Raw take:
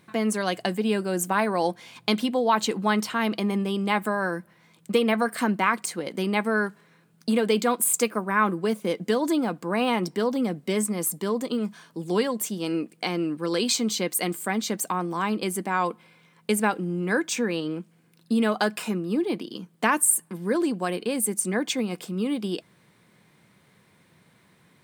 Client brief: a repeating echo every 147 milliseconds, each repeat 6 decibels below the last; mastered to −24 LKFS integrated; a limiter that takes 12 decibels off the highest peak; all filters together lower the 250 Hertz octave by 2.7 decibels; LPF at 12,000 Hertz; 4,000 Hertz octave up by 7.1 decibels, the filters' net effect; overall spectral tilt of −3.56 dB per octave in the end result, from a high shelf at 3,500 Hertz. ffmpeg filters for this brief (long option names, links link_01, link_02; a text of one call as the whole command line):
ffmpeg -i in.wav -af "lowpass=12000,equalizer=frequency=250:width_type=o:gain=-3.5,highshelf=frequency=3500:gain=7.5,equalizer=frequency=4000:width_type=o:gain=4,alimiter=limit=-13dB:level=0:latency=1,aecho=1:1:147|294|441|588|735|882:0.501|0.251|0.125|0.0626|0.0313|0.0157,volume=1dB" out.wav